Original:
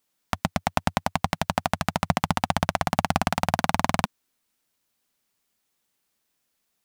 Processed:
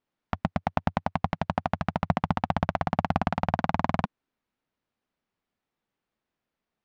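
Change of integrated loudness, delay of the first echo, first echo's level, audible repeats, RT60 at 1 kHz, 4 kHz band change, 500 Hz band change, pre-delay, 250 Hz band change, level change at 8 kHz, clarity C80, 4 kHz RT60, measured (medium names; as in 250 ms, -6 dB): -2.5 dB, no echo, no echo, no echo, no reverb, -11.5 dB, -2.0 dB, no reverb, -0.5 dB, under -20 dB, no reverb, no reverb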